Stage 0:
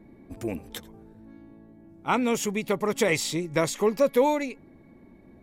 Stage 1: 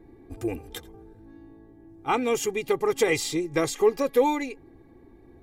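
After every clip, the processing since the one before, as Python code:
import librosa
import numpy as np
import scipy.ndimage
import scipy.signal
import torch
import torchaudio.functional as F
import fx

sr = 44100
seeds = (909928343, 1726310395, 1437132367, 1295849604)

y = fx.low_shelf(x, sr, hz=460.0, db=3.0)
y = y + 0.75 * np.pad(y, (int(2.5 * sr / 1000.0), 0))[:len(y)]
y = y * 10.0 ** (-2.5 / 20.0)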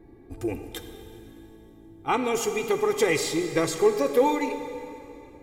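y = fx.rev_plate(x, sr, seeds[0], rt60_s=2.9, hf_ratio=0.9, predelay_ms=0, drr_db=7.0)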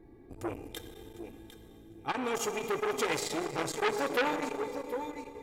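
y = fx.echo_feedback(x, sr, ms=753, feedback_pct=16, wet_db=-11.0)
y = fx.transformer_sat(y, sr, knee_hz=2100.0)
y = y * 10.0 ** (-3.5 / 20.0)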